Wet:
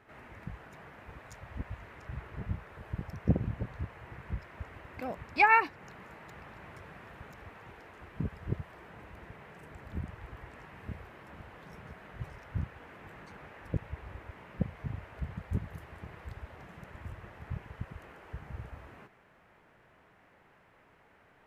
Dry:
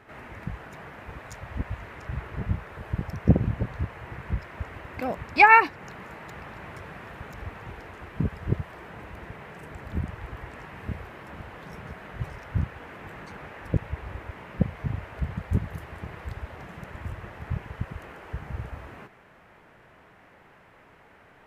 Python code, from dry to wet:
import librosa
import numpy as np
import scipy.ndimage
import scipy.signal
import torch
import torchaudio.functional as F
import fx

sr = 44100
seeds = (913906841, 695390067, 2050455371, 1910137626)

y = fx.low_shelf(x, sr, hz=120.0, db=-9.0, at=(7.34, 7.96))
y = y * librosa.db_to_amplitude(-8.0)